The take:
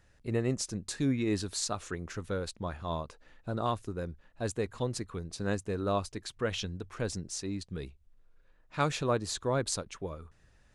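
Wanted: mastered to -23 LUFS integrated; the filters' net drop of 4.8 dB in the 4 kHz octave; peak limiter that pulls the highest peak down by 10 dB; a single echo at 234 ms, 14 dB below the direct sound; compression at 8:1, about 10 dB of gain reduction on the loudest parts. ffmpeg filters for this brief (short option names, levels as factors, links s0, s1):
-af "equalizer=f=4000:t=o:g=-6,acompressor=threshold=0.0178:ratio=8,alimiter=level_in=2.37:limit=0.0631:level=0:latency=1,volume=0.422,aecho=1:1:234:0.2,volume=9.44"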